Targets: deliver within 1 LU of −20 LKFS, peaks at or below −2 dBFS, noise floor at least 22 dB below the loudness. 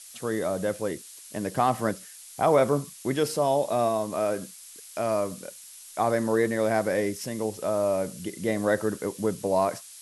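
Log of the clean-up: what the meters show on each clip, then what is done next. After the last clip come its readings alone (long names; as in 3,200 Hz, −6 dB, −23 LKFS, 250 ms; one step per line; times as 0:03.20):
background noise floor −47 dBFS; target noise floor −49 dBFS; integrated loudness −27.0 LKFS; sample peak −10.0 dBFS; target loudness −20.0 LKFS
→ broadband denoise 6 dB, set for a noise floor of −47 dBFS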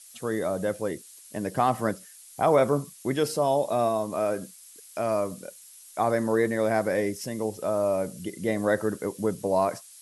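background noise floor −50 dBFS; integrated loudness −27.0 LKFS; sample peak −10.0 dBFS; target loudness −20.0 LKFS
→ level +7 dB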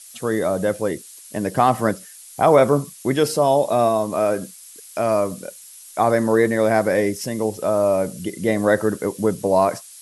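integrated loudness −20.0 LKFS; sample peak −3.0 dBFS; background noise floor −43 dBFS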